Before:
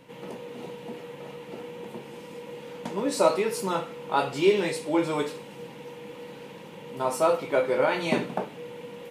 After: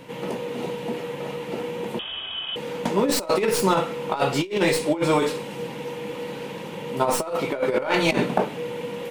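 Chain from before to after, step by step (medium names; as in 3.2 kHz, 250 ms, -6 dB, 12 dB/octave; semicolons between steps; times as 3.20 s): tracing distortion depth 0.041 ms; compressor with a negative ratio -27 dBFS, ratio -0.5; 1.99–2.56 s: frequency inversion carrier 3.5 kHz; trim +6.5 dB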